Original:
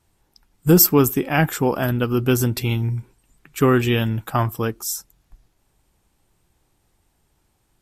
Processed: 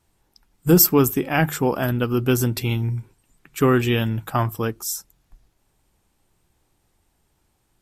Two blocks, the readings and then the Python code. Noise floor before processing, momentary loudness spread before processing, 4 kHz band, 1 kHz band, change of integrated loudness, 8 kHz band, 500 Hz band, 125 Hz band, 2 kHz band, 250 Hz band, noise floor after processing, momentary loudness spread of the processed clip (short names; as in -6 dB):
-67 dBFS, 13 LU, -1.0 dB, -1.0 dB, -1.0 dB, -1.0 dB, -1.0 dB, -1.5 dB, -1.0 dB, -1.0 dB, -68 dBFS, 13 LU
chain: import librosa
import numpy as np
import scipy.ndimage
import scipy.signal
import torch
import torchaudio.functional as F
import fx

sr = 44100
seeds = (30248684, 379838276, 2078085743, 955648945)

y = fx.hum_notches(x, sr, base_hz=50, count=3)
y = y * librosa.db_to_amplitude(-1.0)